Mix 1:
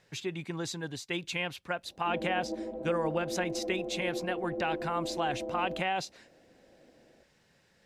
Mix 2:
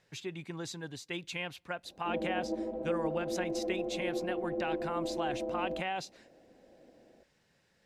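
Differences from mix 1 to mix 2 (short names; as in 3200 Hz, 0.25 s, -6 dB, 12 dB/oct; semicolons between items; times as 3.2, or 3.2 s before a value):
speech -5.0 dB; reverb: on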